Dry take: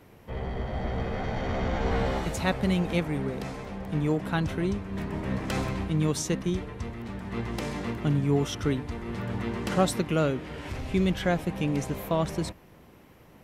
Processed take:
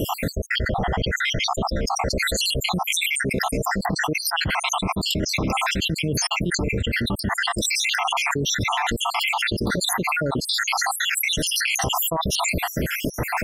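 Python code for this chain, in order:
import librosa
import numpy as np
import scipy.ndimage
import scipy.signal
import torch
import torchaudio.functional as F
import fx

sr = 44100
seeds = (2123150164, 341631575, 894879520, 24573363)

y = fx.spec_dropout(x, sr, seeds[0], share_pct=75)
y = fx.env_flatten(y, sr, amount_pct=100)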